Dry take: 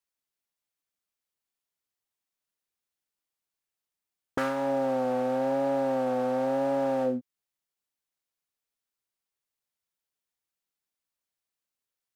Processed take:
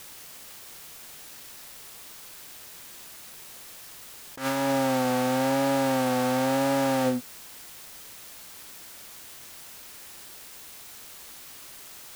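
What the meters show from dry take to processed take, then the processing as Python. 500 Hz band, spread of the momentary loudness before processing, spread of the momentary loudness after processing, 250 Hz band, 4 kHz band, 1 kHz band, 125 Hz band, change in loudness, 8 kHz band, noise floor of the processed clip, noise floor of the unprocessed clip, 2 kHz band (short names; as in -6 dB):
0.0 dB, 4 LU, 18 LU, +4.5 dB, +15.0 dB, +4.0 dB, +8.5 dB, +3.0 dB, n/a, -45 dBFS, under -85 dBFS, +8.0 dB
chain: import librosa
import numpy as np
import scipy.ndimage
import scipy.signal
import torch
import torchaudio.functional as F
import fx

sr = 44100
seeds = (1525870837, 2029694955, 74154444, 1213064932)

p1 = fx.envelope_flatten(x, sr, power=0.6)
p2 = fx.quant_dither(p1, sr, seeds[0], bits=6, dither='triangular')
p3 = p1 + (p2 * 10.0 ** (-9.0 / 20.0))
y = fx.attack_slew(p3, sr, db_per_s=180.0)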